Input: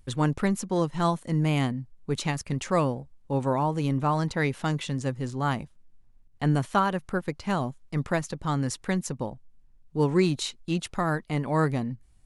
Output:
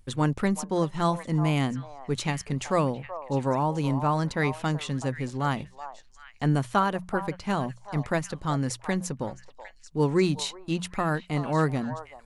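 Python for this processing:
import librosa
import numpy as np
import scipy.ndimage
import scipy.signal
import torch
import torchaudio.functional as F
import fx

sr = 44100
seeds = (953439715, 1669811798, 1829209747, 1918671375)

y = fx.hum_notches(x, sr, base_hz=60, count=3)
y = fx.echo_stepped(y, sr, ms=378, hz=810.0, octaves=1.4, feedback_pct=70, wet_db=-8.5)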